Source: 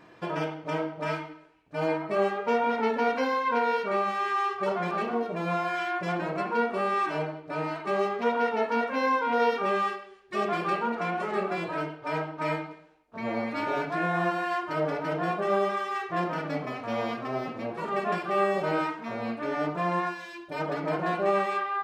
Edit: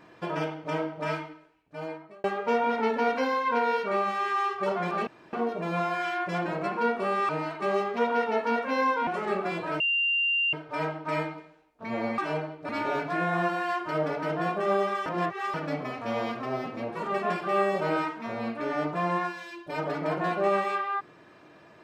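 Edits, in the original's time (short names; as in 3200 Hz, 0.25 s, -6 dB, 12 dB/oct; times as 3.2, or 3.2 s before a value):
1.19–2.24 fade out
5.07 insert room tone 0.26 s
7.03–7.54 move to 13.51
9.32–11.13 cut
11.86 add tone 2780 Hz -22.5 dBFS 0.73 s
15.88–16.36 reverse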